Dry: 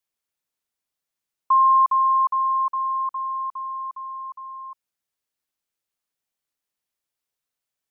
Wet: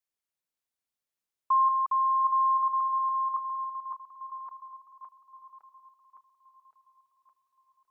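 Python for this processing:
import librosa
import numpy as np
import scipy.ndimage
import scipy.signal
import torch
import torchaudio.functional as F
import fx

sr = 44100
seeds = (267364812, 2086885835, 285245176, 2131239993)

y = fx.reverse_delay_fb(x, sr, ms=561, feedback_pct=60, wet_db=-6)
y = F.gain(torch.from_numpy(y), -6.5).numpy()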